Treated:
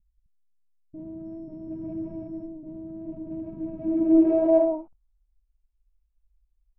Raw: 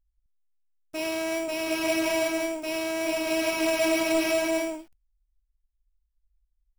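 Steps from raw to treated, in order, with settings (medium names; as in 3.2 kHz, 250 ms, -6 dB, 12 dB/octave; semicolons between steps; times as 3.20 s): local Wiener filter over 25 samples; 1.24–2.46 s: whistle 5.4 kHz -30 dBFS; low-pass sweep 180 Hz -> 2.8 kHz, 3.75–5.53 s; trim +4 dB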